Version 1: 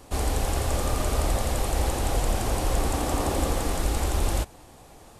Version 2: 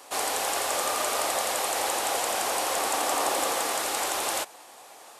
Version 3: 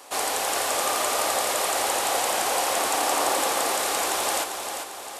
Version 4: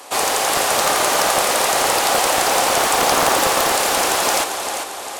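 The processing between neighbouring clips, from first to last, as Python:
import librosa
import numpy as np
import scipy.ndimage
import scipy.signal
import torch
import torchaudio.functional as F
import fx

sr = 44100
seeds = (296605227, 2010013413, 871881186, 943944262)

y1 = scipy.signal.sosfilt(scipy.signal.butter(2, 680.0, 'highpass', fs=sr, output='sos'), x)
y1 = y1 * librosa.db_to_amplitude(5.5)
y2 = fx.echo_feedback(y1, sr, ms=397, feedback_pct=50, wet_db=-7)
y2 = y2 * librosa.db_to_amplitude(2.0)
y3 = fx.doppler_dist(y2, sr, depth_ms=0.51)
y3 = y3 * librosa.db_to_amplitude(8.0)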